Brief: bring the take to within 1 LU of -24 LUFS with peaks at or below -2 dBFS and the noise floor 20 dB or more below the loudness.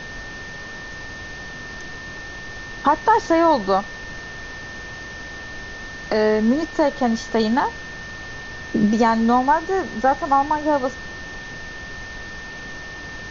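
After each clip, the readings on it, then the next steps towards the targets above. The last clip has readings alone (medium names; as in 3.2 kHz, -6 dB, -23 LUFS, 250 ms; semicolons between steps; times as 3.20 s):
steady tone 1.8 kHz; tone level -34 dBFS; noise floor -35 dBFS; noise floor target -40 dBFS; loudness -19.5 LUFS; peak level -5.0 dBFS; loudness target -24.0 LUFS
-> band-stop 1.8 kHz, Q 30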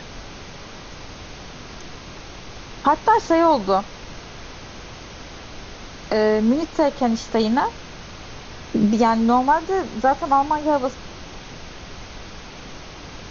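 steady tone not found; noise floor -39 dBFS; noise floor target -40 dBFS
-> noise print and reduce 6 dB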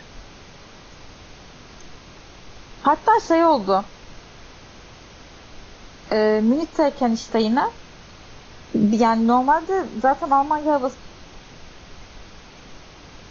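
noise floor -45 dBFS; loudness -19.5 LUFS; peak level -5.0 dBFS; loudness target -24.0 LUFS
-> trim -4.5 dB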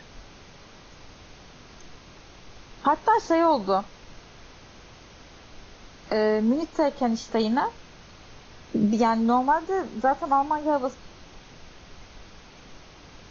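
loudness -24.0 LUFS; peak level -9.5 dBFS; noise floor -49 dBFS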